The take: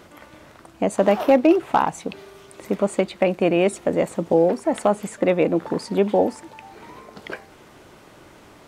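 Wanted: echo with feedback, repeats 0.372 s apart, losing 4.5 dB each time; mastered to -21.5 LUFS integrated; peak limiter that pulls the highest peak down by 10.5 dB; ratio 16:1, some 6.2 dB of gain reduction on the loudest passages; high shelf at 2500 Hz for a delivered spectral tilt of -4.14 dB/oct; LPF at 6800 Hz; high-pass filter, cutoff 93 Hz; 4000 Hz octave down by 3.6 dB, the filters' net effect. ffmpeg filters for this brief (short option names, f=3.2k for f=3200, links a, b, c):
-af "highpass=93,lowpass=6.8k,highshelf=f=2.5k:g=3.5,equalizer=f=4k:t=o:g=-8.5,acompressor=threshold=-17dB:ratio=16,alimiter=limit=-16.5dB:level=0:latency=1,aecho=1:1:372|744|1116|1488|1860|2232|2604|2976|3348:0.596|0.357|0.214|0.129|0.0772|0.0463|0.0278|0.0167|0.01,volume=6dB"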